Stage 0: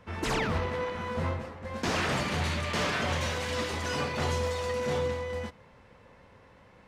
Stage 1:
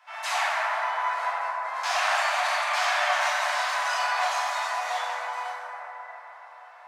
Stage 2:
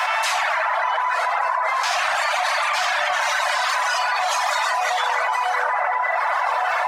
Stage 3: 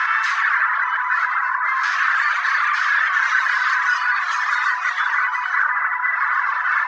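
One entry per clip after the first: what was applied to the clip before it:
steep high-pass 630 Hz 96 dB/octave; reverb removal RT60 0.59 s; plate-style reverb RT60 4.8 s, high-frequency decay 0.25×, DRR -9.5 dB
reverb removal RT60 1.3 s; in parallel at -9 dB: one-sided clip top -22.5 dBFS; on the sum: level flattener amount 100%
FFT filter 130 Hz 0 dB, 230 Hz -25 dB, 340 Hz -13 dB, 740 Hz -18 dB, 1.1 kHz +8 dB, 1.7 kHz +14 dB, 2.5 kHz 0 dB, 6.3 kHz -3 dB, 9.4 kHz -23 dB; trim -5.5 dB

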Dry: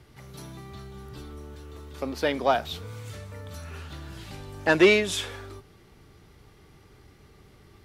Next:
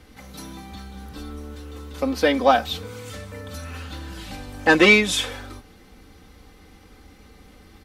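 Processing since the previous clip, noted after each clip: comb 3.9 ms, depth 77%; trim +4.5 dB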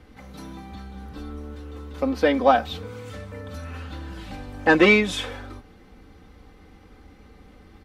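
treble shelf 3.6 kHz -12 dB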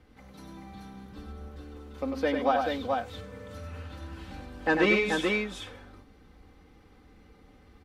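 multi-tap echo 97/432 ms -5.5/-4 dB; trim -8.5 dB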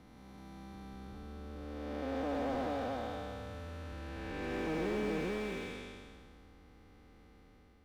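spectral blur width 754 ms; slew-rate limiter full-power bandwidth 18 Hz; trim -2 dB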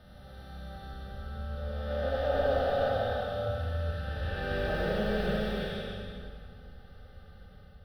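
static phaser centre 1.5 kHz, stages 8; simulated room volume 2300 m³, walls mixed, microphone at 2.6 m; trim +5.5 dB

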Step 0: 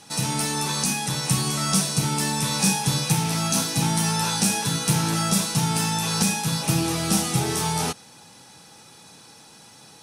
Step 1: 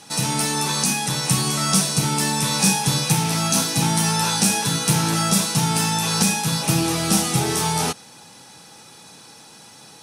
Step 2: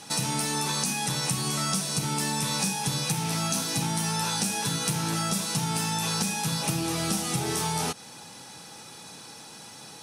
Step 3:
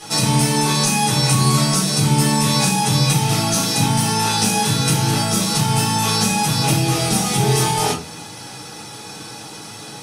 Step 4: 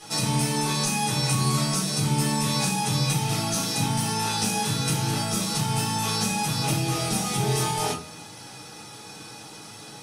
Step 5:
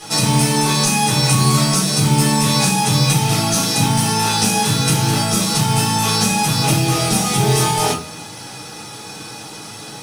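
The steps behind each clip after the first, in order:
bass shelf 81 Hz -7 dB; trim +3.5 dB
compression, threshold -25 dBFS, peak gain reduction 12 dB
reverberation RT60 0.35 s, pre-delay 5 ms, DRR -6 dB; trim +2 dB
feedback comb 620 Hz, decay 0.49 s, mix 60%
modulation noise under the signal 26 dB; trim +9 dB

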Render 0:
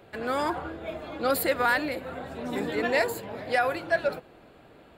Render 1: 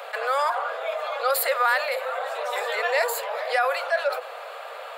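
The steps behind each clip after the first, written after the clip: steep high-pass 490 Hz 72 dB/octave; peaking EQ 1.2 kHz +7.5 dB 0.22 oct; level flattener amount 50%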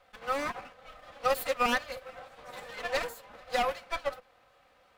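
comb filter that takes the minimum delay 3.9 ms; upward expansion 2.5:1, over -35 dBFS; trim -2.5 dB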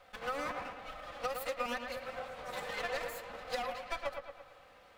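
compression 16:1, threshold -37 dBFS, peak gain reduction 16 dB; on a send: feedback echo behind a low-pass 112 ms, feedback 53%, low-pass 3.4 kHz, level -6.5 dB; on the sum: trim +3 dB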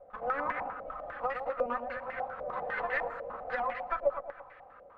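step-sequenced low-pass 10 Hz 590–1900 Hz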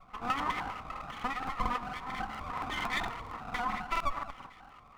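comb filter that takes the minimum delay 0.93 ms; reverberation RT60 0.95 s, pre-delay 8 ms, DRR 16.5 dB; crackling interface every 0.23 s, samples 2048, repeat, from 0.92 s; trim +1.5 dB

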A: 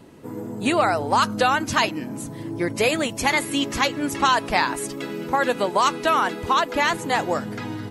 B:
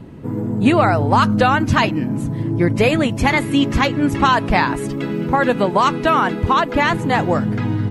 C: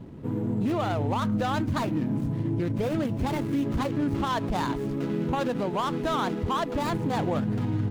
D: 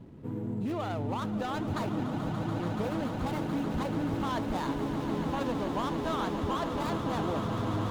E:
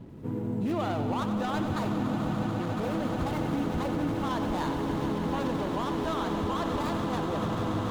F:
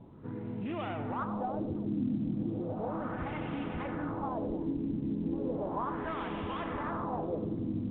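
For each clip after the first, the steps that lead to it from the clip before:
tone controls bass +12 dB, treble -10 dB; trim +4 dB
median filter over 25 samples; peak limiter -14 dBFS, peak gain reduction 10.5 dB; trim -5.5 dB
echo with a slow build-up 144 ms, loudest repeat 8, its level -11.5 dB; trim -6.5 dB
peak limiter -26 dBFS, peak gain reduction 6.5 dB; bit-crushed delay 92 ms, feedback 80%, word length 11-bit, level -10 dB; trim +3.5 dB
LFO low-pass sine 0.35 Hz 250–2700 Hz; trim -7.5 dB; µ-law 64 kbps 8 kHz

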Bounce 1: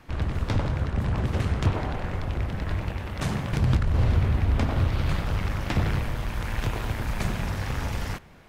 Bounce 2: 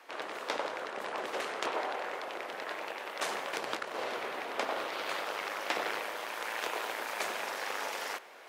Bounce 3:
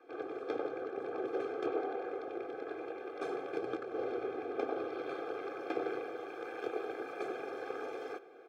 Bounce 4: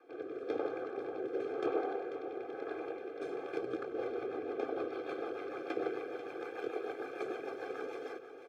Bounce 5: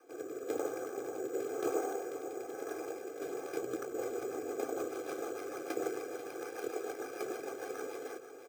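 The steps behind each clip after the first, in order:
high-pass 430 Hz 24 dB/octave; reverse; upward compressor, threshold -46 dBFS; reverse
boxcar filter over 46 samples; comb 2.5 ms, depth 80%; trim +5 dB
rotary cabinet horn 1 Hz, later 6.7 Hz, at 3.26 s; delay 491 ms -11 dB; trim +1.5 dB
careless resampling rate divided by 6×, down none, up hold

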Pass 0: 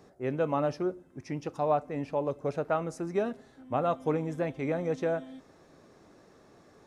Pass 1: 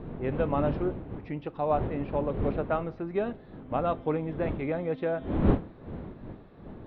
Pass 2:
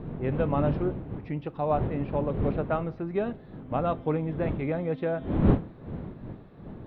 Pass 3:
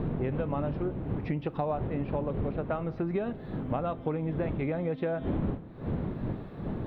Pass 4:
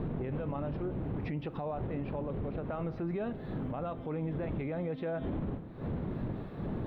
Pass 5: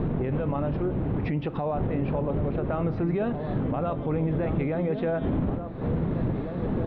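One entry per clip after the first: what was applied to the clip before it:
wind noise 290 Hz -34 dBFS; steep low-pass 3.9 kHz 48 dB/octave
peaking EQ 140 Hz +5 dB 1.2 oct
compression 16:1, threshold -35 dBFS, peak gain reduction 21.5 dB; trim +8 dB
peak limiter -28 dBFS, peak gain reduction 10.5 dB
distance through air 85 m; echo from a far wall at 300 m, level -7 dB; trim +8.5 dB

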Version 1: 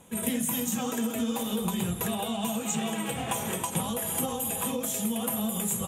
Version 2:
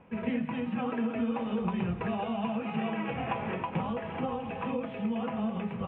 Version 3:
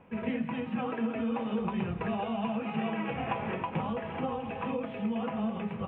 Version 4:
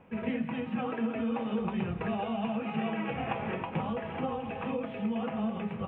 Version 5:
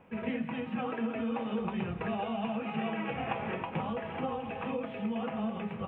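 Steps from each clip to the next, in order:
elliptic low-pass 2.6 kHz, stop band 60 dB
hum notches 60/120/180/240 Hz
band-stop 1 kHz, Q 24
bass shelf 360 Hz -3 dB

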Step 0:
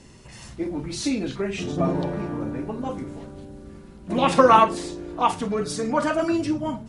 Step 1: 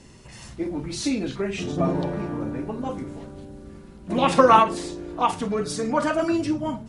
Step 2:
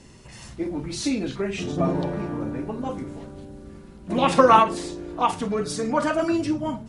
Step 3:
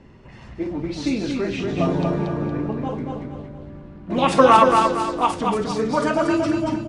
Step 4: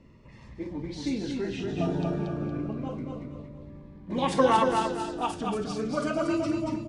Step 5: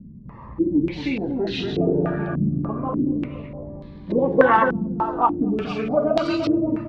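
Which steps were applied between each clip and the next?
endings held to a fixed fall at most 250 dB/s
no audible change
level-controlled noise filter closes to 2 kHz, open at -16.5 dBFS; feedback delay 232 ms, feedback 40%, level -4 dB; trim +1.5 dB
Shepard-style phaser falling 0.3 Hz; trim -6.5 dB
in parallel at +1 dB: compression, threshold -34 dBFS, peak gain reduction 16 dB; on the sum: step-sequenced low-pass 3.4 Hz 200–4000 Hz; trim +1 dB

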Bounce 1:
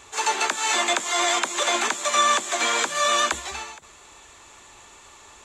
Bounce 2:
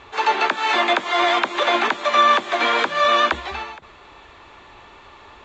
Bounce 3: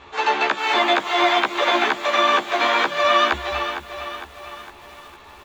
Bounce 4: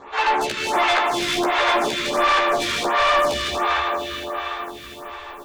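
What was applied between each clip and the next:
low-pass 4.4 kHz 24 dB/octave; treble shelf 3.3 kHz -8.5 dB; trim +6.5 dB
doubling 14 ms -2.5 dB; bit-crushed delay 457 ms, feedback 55%, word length 7-bit, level -10 dB; trim -2 dB
multi-head delay 80 ms, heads second and third, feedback 68%, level -8.5 dB; saturation -20 dBFS, distortion -8 dB; lamp-driven phase shifter 1.4 Hz; trim +6.5 dB

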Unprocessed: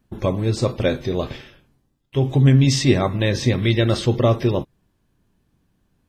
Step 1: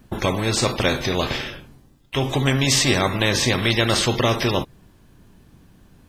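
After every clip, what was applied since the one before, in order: spectrum-flattening compressor 2:1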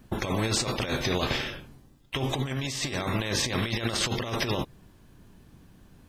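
compressor with a negative ratio -22 dBFS, ratio -0.5; trim -5.5 dB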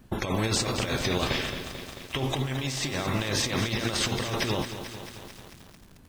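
bit-crushed delay 220 ms, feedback 80%, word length 7-bit, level -10 dB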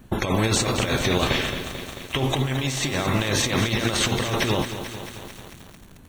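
band-stop 5 kHz, Q 5.5; trim +5.5 dB

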